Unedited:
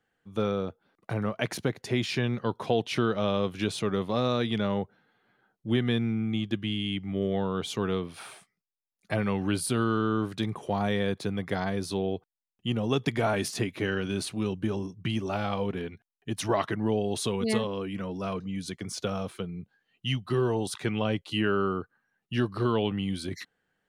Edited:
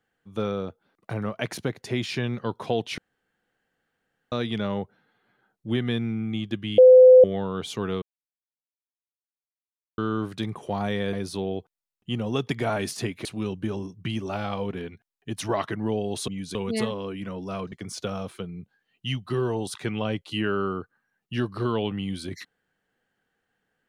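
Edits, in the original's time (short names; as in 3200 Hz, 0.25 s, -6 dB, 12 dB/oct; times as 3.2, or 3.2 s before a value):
2.98–4.32 room tone
6.78–7.24 bleep 510 Hz -7.5 dBFS
8.02–9.98 mute
11.13–11.7 cut
13.82–14.25 cut
18.45–18.72 move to 17.28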